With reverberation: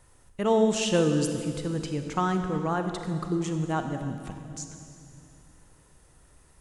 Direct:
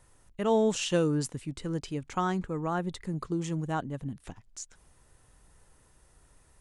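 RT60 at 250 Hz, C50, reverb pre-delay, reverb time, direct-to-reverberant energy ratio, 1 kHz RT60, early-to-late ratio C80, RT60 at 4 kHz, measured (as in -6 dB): 3.2 s, 6.5 dB, 32 ms, 2.6 s, 6.0 dB, 2.3 s, 7.0 dB, 2.2 s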